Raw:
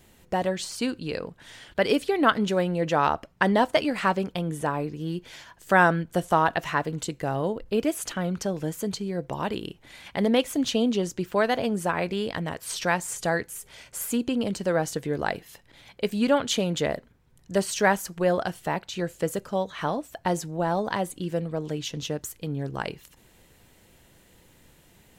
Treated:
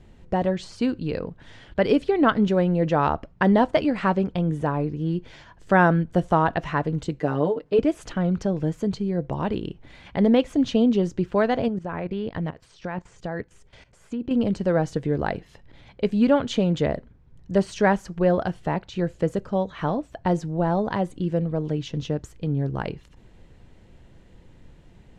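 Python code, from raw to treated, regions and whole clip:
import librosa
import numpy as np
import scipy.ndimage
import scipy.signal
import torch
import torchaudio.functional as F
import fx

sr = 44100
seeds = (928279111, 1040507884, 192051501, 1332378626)

y = fx.chain(x, sr, fx.highpass(hz=230.0, slope=12),
    fx.comb(ms=6.7, depth=0.92), at=(7.2, 7.79))
y = fx.chain(y, sr, fx.env_lowpass_down(base_hz=2900.0, full_db=-21.5),
    fx.level_steps(step_db=16), at=(11.68, 14.31))
y = scipy.signal.sosfilt(scipy.signal.butter(2, 6400.0, 'lowpass', fs=sr, output='sos'), y)
y = fx.tilt_eq(y, sr, slope=-2.5)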